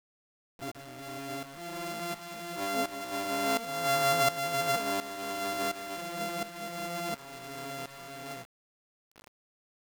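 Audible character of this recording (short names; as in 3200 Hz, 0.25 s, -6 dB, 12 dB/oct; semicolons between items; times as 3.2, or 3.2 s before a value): a buzz of ramps at a fixed pitch in blocks of 64 samples; tremolo saw up 1.4 Hz, depth 80%; a quantiser's noise floor 8-bit, dither none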